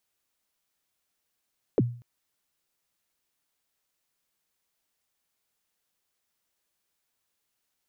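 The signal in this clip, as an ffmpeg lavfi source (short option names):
-f lavfi -i "aevalsrc='0.168*pow(10,-3*t/0.43)*sin(2*PI*(540*0.034/log(120/540)*(exp(log(120/540)*min(t,0.034)/0.034)-1)+120*max(t-0.034,0)))':d=0.24:s=44100"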